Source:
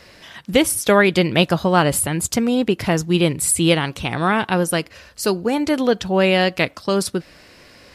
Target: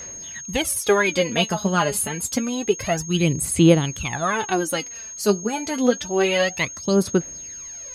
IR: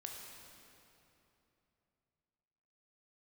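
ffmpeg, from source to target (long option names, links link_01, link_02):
-af "aphaser=in_gain=1:out_gain=1:delay=4.9:decay=0.7:speed=0.28:type=sinusoidal,aeval=exprs='val(0)+0.0447*sin(2*PI*6500*n/s)':channel_layout=same,volume=-6.5dB"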